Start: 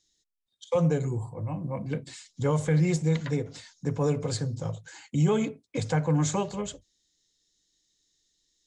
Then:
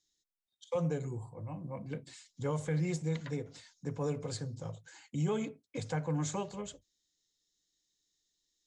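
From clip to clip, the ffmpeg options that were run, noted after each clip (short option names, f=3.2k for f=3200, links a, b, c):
-af "lowshelf=f=140:g=-3,volume=-8dB"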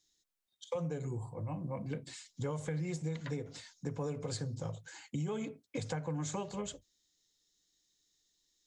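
-af "acompressor=threshold=-38dB:ratio=6,volume=4dB"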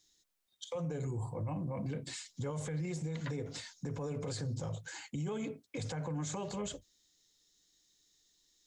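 -af "alimiter=level_in=12dB:limit=-24dB:level=0:latency=1:release=23,volume=-12dB,volume=5dB"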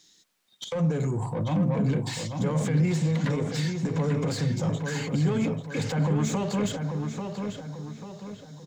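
-filter_complex "[0:a]asplit=2[a][b];[b]highpass=f=720:p=1,volume=15dB,asoftclip=type=tanh:threshold=-30.5dB[c];[a][c]amix=inputs=2:normalize=0,lowpass=f=4.8k:p=1,volume=-6dB,equalizer=f=180:t=o:w=1.3:g=12.5,asplit=2[d][e];[e]adelay=841,lowpass=f=3.3k:p=1,volume=-5.5dB,asplit=2[f][g];[g]adelay=841,lowpass=f=3.3k:p=1,volume=0.44,asplit=2[h][i];[i]adelay=841,lowpass=f=3.3k:p=1,volume=0.44,asplit=2[j][k];[k]adelay=841,lowpass=f=3.3k:p=1,volume=0.44,asplit=2[l][m];[m]adelay=841,lowpass=f=3.3k:p=1,volume=0.44[n];[d][f][h][j][l][n]amix=inputs=6:normalize=0,volume=5dB"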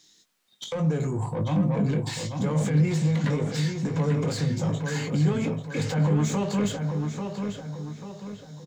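-filter_complex "[0:a]asplit=2[a][b];[b]adelay=20,volume=-8dB[c];[a][c]amix=inputs=2:normalize=0"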